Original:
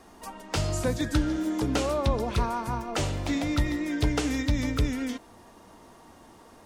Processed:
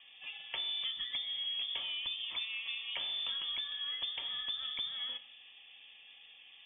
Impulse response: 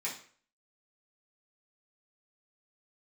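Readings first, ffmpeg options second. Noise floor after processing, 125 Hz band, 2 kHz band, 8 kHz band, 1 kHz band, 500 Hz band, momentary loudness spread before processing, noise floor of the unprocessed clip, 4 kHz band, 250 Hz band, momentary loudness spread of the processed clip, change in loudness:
-57 dBFS, under -40 dB, -7.0 dB, under -40 dB, -21.5 dB, -31.0 dB, 6 LU, -53 dBFS, +6.0 dB, under -40 dB, 19 LU, -7.5 dB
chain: -filter_complex "[0:a]acompressor=threshold=-31dB:ratio=6,bandreject=f=2.1k:w=5.6,lowpass=f=3.1k:t=q:w=0.5098,lowpass=f=3.1k:t=q:w=0.6013,lowpass=f=3.1k:t=q:w=0.9,lowpass=f=3.1k:t=q:w=2.563,afreqshift=-3600,asplit=2[a][b];[1:a]atrim=start_sample=2205,asetrate=31311,aresample=44100[c];[b][c]afir=irnorm=-1:irlink=0,volume=-14.5dB[d];[a][d]amix=inputs=2:normalize=0,volume=-5.5dB"

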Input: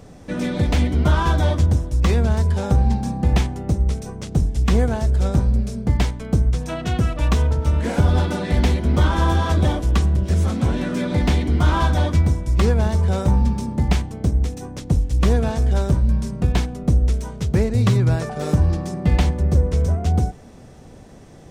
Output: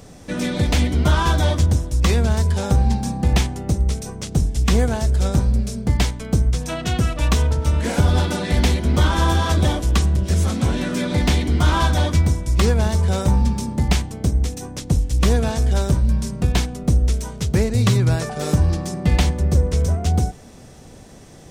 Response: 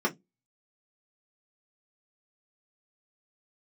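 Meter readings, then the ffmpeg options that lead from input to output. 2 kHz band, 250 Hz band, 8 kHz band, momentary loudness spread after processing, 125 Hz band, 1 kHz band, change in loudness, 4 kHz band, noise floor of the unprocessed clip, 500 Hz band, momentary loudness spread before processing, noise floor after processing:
+2.5 dB, 0.0 dB, +7.5 dB, 5 LU, 0.0 dB, +1.0 dB, +0.5 dB, +5.5 dB, -42 dBFS, +0.5 dB, 5 LU, -42 dBFS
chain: -af "highshelf=f=2.8k:g=8.5"

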